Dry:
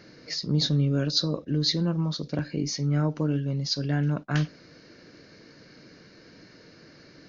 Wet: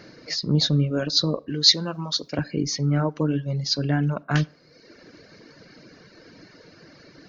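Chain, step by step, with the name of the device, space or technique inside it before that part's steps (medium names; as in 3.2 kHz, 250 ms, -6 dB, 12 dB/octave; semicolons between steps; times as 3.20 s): peaking EQ 810 Hz +3 dB 1.6 oct; filtered reverb send (on a send at -14 dB: high-pass 150 Hz 24 dB/octave + low-pass 3.9 kHz + reverberation RT60 0.60 s, pre-delay 35 ms); on the sum: reverb removal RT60 0.96 s; 1.50–2.38 s: tilt EQ +3 dB/octave; trim +4 dB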